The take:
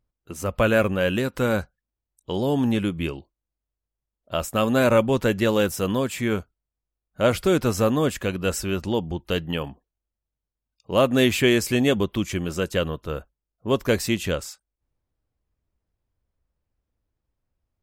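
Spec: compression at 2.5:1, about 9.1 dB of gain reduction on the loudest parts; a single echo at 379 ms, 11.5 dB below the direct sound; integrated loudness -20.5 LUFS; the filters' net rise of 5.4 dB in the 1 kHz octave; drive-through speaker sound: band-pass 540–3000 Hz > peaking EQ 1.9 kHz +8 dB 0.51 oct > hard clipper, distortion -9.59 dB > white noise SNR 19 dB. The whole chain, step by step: peaking EQ 1 kHz +6.5 dB; compression 2.5:1, threshold -26 dBFS; band-pass 540–3000 Hz; peaking EQ 1.9 kHz +8 dB 0.51 oct; delay 379 ms -11.5 dB; hard clipper -25.5 dBFS; white noise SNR 19 dB; trim +13 dB

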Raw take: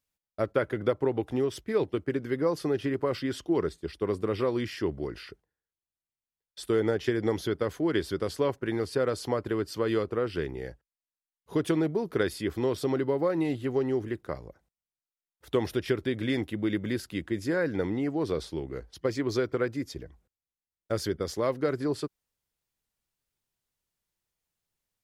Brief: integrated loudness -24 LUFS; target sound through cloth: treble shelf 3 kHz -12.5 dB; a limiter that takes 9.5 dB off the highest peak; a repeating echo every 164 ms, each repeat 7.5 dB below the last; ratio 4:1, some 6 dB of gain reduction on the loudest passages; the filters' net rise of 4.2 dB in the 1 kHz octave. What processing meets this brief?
peaking EQ 1 kHz +7 dB; compression 4:1, threshold -27 dBFS; peak limiter -24 dBFS; treble shelf 3 kHz -12.5 dB; feedback delay 164 ms, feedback 42%, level -7.5 dB; trim +11 dB

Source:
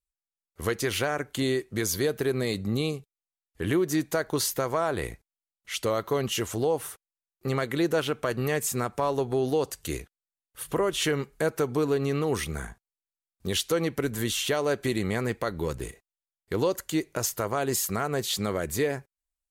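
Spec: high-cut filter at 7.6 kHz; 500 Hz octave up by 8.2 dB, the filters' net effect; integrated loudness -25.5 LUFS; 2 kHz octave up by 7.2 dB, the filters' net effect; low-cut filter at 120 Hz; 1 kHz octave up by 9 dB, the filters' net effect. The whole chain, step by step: high-pass 120 Hz; low-pass 7.6 kHz; peaking EQ 500 Hz +8 dB; peaking EQ 1 kHz +7.5 dB; peaking EQ 2 kHz +6 dB; trim -3.5 dB

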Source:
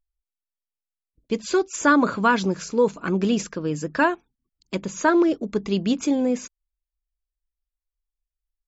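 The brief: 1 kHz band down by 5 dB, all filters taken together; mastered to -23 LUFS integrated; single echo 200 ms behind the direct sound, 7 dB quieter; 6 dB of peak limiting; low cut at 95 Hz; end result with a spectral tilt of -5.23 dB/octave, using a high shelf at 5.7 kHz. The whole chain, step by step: high-pass 95 Hz; peaking EQ 1 kHz -6 dB; treble shelf 5.7 kHz -4 dB; peak limiter -15 dBFS; delay 200 ms -7 dB; trim +2.5 dB

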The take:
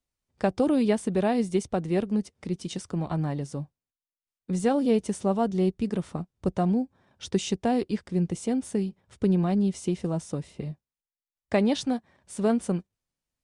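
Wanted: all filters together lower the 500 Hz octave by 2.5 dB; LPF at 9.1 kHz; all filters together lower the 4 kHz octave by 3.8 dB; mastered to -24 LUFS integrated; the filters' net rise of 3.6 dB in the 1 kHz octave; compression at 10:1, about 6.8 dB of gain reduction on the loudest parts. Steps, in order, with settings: low-pass 9.1 kHz; peaking EQ 500 Hz -5.5 dB; peaking EQ 1 kHz +8.5 dB; peaking EQ 4 kHz -5.5 dB; compression 10:1, threshold -26 dBFS; trim +9 dB

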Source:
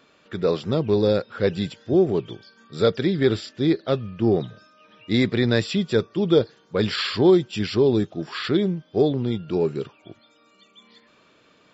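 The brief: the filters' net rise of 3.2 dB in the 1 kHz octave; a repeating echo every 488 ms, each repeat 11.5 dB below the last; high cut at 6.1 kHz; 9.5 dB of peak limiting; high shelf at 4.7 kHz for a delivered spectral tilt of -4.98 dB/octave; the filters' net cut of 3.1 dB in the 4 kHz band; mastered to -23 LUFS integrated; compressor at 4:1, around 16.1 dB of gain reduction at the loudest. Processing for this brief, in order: low-pass 6.1 kHz; peaking EQ 1 kHz +4.5 dB; peaking EQ 4 kHz -6.5 dB; treble shelf 4.7 kHz +7 dB; compression 4:1, threshold -32 dBFS; peak limiter -28.5 dBFS; feedback delay 488 ms, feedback 27%, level -11.5 dB; trim +16 dB

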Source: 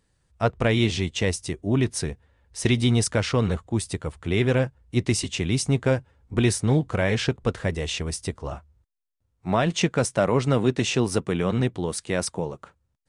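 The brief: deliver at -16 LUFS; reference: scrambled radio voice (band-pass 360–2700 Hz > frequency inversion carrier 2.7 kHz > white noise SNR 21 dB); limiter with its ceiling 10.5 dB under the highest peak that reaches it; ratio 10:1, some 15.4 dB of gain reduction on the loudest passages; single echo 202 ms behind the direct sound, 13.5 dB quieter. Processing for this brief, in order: compression 10:1, threshold -32 dBFS; peak limiter -30.5 dBFS; band-pass 360–2700 Hz; delay 202 ms -13.5 dB; frequency inversion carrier 2.7 kHz; white noise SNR 21 dB; trim +29 dB

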